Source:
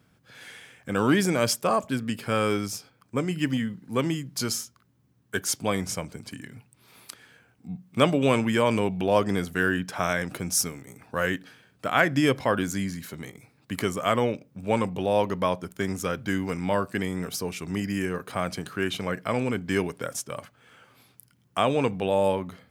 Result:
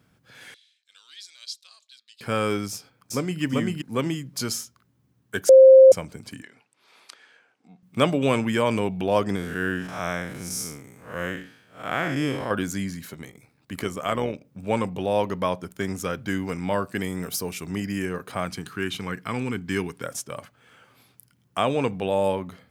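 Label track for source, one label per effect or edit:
0.540000	2.210000	four-pole ladder band-pass 4,200 Hz, resonance 80%
2.710000	3.420000	delay throw 390 ms, feedback 10%, level 0 dB
5.490000	5.920000	beep over 528 Hz −6.5 dBFS
6.420000	7.830000	band-pass filter 460–6,200 Hz
9.360000	12.510000	spectrum smeared in time width 164 ms
13.140000	14.450000	amplitude modulation modulator 75 Hz, depth 35%
16.960000	17.670000	high-shelf EQ 10,000 Hz +10.5 dB
18.450000	20.040000	parametric band 590 Hz −14.5 dB 0.44 octaves

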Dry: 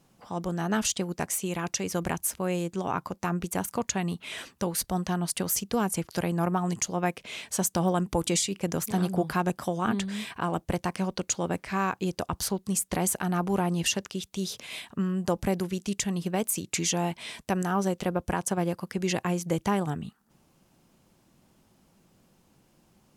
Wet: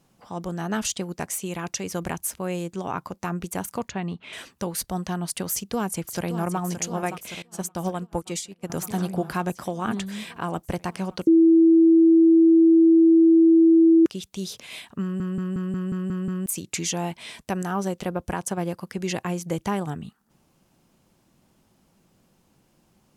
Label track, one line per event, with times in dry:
3.880000	4.330000	Bessel low-pass filter 3,000 Hz
5.500000	6.600000	delay throw 570 ms, feedback 75%, level −9.5 dB
7.420000	8.700000	expander for the loud parts 2.5 to 1, over −38 dBFS
11.270000	14.060000	beep over 328 Hz −11.5 dBFS
15.020000	15.020000	stutter in place 0.18 s, 8 plays

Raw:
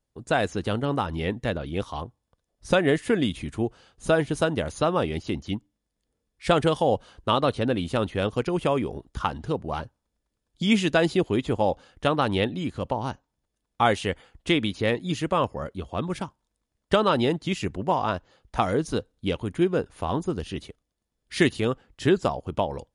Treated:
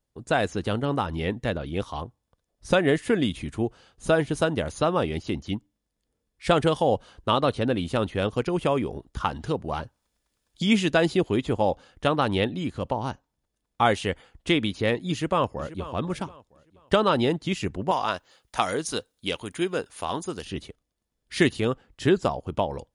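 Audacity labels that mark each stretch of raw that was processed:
9.270000	11.390000	one half of a high-frequency compander encoder only
15.110000	15.880000	delay throw 480 ms, feedback 30%, level −15.5 dB
17.910000	20.450000	spectral tilt +3 dB per octave

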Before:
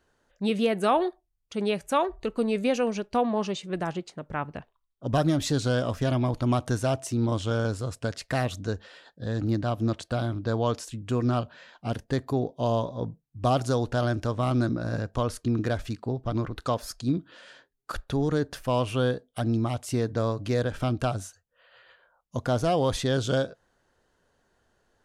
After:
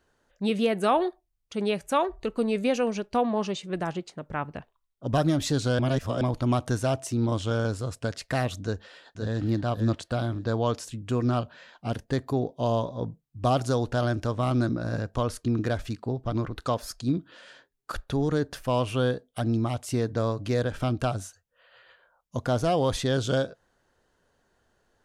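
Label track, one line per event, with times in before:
5.790000	6.210000	reverse
8.630000	9.420000	delay throw 520 ms, feedback 15%, level −6 dB

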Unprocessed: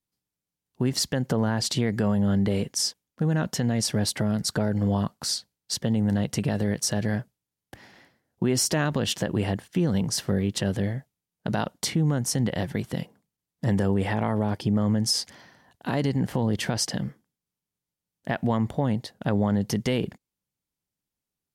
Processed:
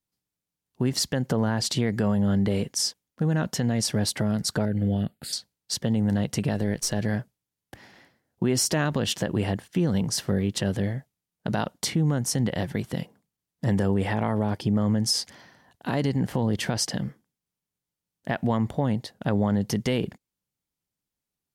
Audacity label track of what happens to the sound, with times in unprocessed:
4.650000	5.330000	phaser with its sweep stopped centre 2,500 Hz, stages 4
6.540000	6.990000	gain on one half-wave negative side −3 dB

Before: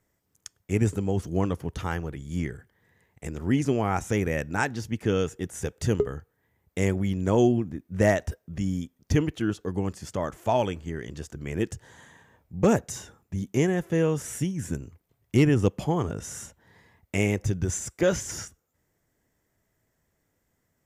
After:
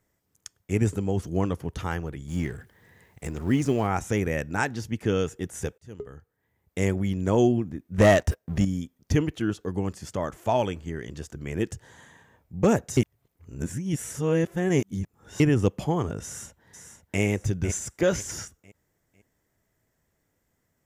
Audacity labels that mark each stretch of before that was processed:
2.280000	3.870000	mu-law and A-law mismatch coded by mu
5.780000	6.830000	fade in
7.980000	8.650000	leveller curve on the samples passes 2
12.970000	15.400000	reverse
16.230000	17.210000	delay throw 500 ms, feedback 35%, level −9 dB

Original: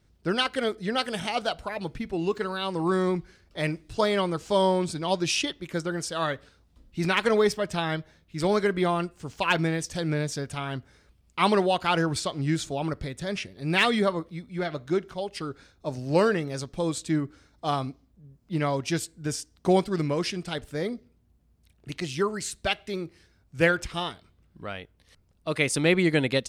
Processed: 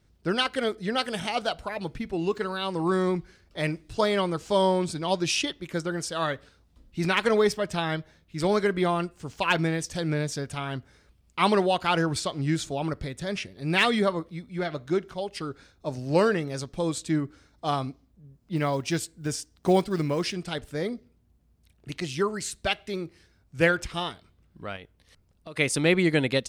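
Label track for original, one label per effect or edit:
18.560000	20.350000	one scale factor per block 7 bits
24.760000	25.570000	downward compressor, threshold −38 dBFS

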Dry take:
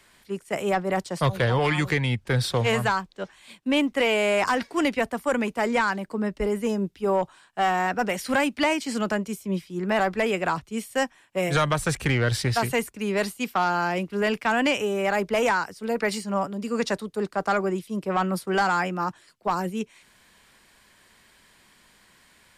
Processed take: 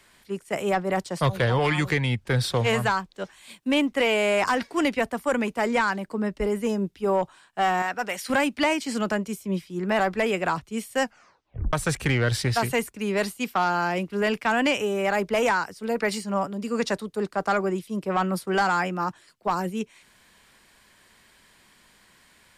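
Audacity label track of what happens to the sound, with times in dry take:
3.140000	3.740000	high-shelf EQ 6,900 Hz +8 dB
7.820000	8.300000	low-shelf EQ 470 Hz −12 dB
11.020000	11.020000	tape stop 0.71 s

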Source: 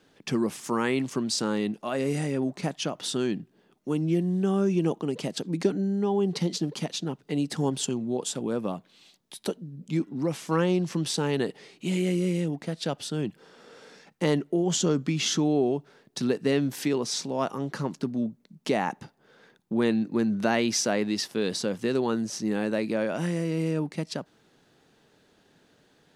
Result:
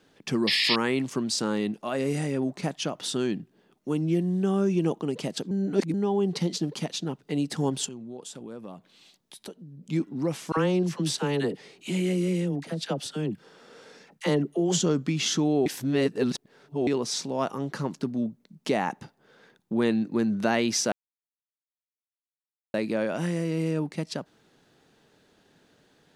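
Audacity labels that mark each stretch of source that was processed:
0.470000	0.760000	sound drawn into the spectrogram noise 1,700–5,400 Hz −24 dBFS
5.510000	5.940000	reverse
7.870000	9.860000	downward compressor 2 to 1, threshold −45 dBFS
10.520000	14.820000	all-pass dispersion lows, late by 51 ms, half as late at 730 Hz
15.660000	16.870000	reverse
20.920000	22.740000	silence

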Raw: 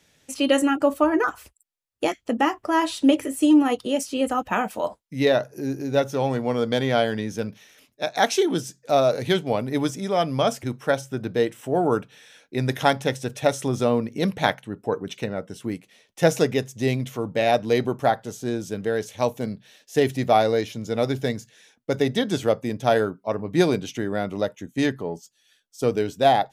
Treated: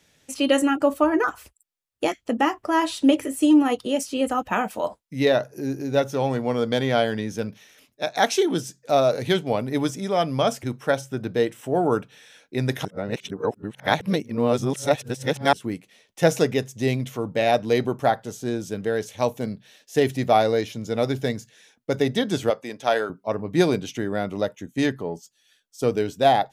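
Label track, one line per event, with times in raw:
12.850000	15.530000	reverse
22.500000	23.100000	meter weighting curve A

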